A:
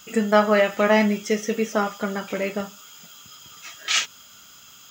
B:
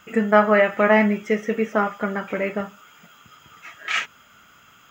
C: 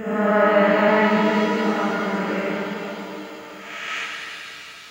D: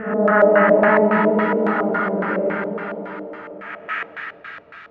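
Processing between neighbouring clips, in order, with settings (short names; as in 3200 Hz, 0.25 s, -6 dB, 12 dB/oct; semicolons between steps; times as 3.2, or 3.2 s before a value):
resonant high shelf 3000 Hz -12.5 dB, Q 1.5; gain +1 dB
time blur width 0.201 s; reverse echo 0.176 s -6.5 dB; shimmer reverb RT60 3.5 s, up +7 st, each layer -8 dB, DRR 0 dB
LFO low-pass square 3.6 Hz 570–1600 Hz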